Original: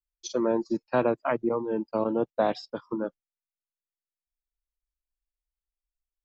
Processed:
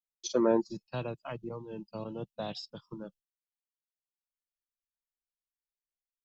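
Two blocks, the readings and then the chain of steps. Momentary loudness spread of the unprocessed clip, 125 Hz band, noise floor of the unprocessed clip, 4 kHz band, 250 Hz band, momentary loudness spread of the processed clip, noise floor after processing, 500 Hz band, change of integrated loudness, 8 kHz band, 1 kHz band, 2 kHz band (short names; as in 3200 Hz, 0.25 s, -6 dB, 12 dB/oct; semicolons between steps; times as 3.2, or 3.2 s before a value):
8 LU, -0.5 dB, under -85 dBFS, 0.0 dB, -5.5 dB, 18 LU, under -85 dBFS, -7.0 dB, -5.5 dB, n/a, -10.0 dB, -10.0 dB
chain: gate with hold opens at -51 dBFS; spectral gain 0.61–3.32, 210–2500 Hz -14 dB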